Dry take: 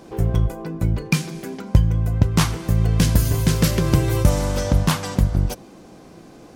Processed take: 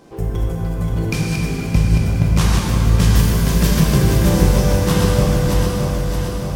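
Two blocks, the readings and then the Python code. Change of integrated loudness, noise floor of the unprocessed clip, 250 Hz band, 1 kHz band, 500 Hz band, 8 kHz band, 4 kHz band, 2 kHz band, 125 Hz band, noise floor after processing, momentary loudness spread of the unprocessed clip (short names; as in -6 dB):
+3.5 dB, -45 dBFS, +4.5 dB, +4.0 dB, +5.5 dB, +3.5 dB, +3.5 dB, +4.0 dB, +3.5 dB, -24 dBFS, 7 LU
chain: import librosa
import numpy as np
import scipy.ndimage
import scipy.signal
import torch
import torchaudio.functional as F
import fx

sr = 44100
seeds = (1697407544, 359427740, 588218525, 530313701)

y = fx.reverse_delay_fb(x, sr, ms=310, feedback_pct=76, wet_db=-4.0)
y = fx.rev_plate(y, sr, seeds[0], rt60_s=3.7, hf_ratio=0.75, predelay_ms=0, drr_db=-3.0)
y = F.gain(torch.from_numpy(y), -3.5).numpy()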